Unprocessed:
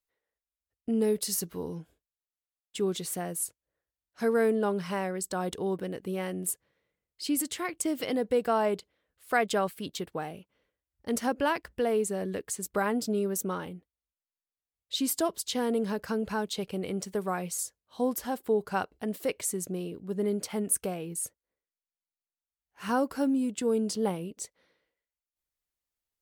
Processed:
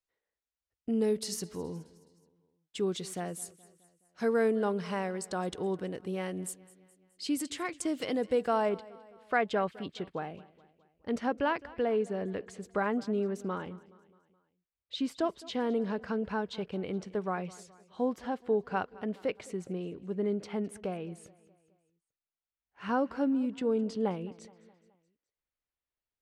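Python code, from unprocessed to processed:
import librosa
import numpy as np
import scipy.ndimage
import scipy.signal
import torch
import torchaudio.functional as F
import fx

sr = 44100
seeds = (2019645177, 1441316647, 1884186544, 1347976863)

y = fx.lowpass(x, sr, hz=fx.steps((0.0, 7300.0), (8.69, 3100.0)), slope=12)
y = fx.echo_feedback(y, sr, ms=211, feedback_pct=53, wet_db=-21)
y = F.gain(torch.from_numpy(y), -2.0).numpy()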